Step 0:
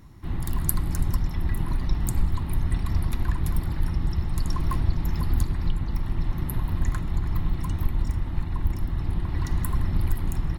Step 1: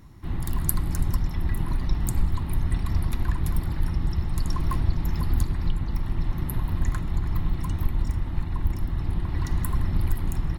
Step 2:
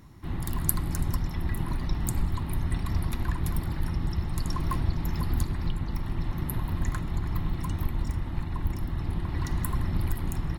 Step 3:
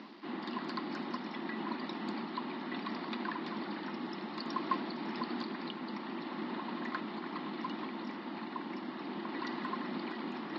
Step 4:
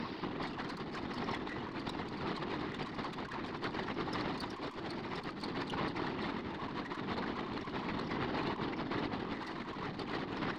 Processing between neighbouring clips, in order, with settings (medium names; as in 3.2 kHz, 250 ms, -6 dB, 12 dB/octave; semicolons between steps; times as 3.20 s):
no audible change
bass shelf 70 Hz -6.5 dB
reverse; upward compressor, threshold -28 dBFS; reverse; bit crusher 9-bit; Chebyshev band-pass 210–4800 Hz, order 5; trim +1 dB
whisper effect; valve stage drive 36 dB, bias 0.45; compressor with a negative ratio -46 dBFS, ratio -0.5; trim +7.5 dB